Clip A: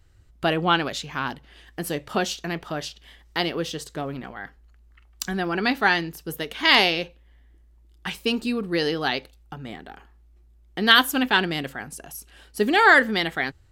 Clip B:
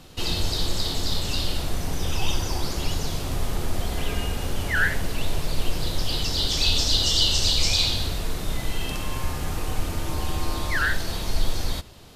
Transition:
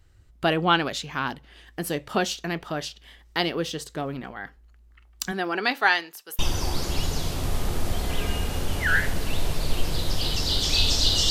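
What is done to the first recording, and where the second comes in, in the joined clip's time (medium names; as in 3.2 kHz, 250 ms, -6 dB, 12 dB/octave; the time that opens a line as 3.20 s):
clip A
5.31–6.39 s: high-pass 240 Hz -> 990 Hz
6.39 s: go over to clip B from 2.27 s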